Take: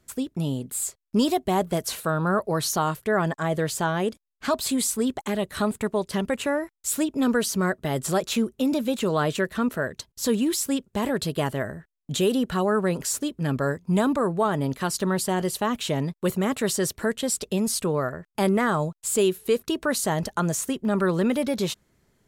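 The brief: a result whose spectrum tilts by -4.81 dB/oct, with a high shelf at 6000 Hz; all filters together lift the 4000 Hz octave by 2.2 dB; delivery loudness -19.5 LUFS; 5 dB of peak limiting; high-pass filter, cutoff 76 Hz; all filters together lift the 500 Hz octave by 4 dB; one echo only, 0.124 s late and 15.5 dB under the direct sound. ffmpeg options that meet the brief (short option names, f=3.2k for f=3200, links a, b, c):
-af "highpass=76,equalizer=f=500:t=o:g=5,equalizer=f=4k:t=o:g=5,highshelf=f=6k:g=-6.5,alimiter=limit=-13.5dB:level=0:latency=1,aecho=1:1:124:0.168,volume=5dB"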